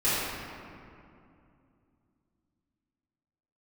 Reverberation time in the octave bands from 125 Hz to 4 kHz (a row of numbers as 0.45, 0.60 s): 3.5, 3.5, 2.7, 2.5, 2.0, 1.3 s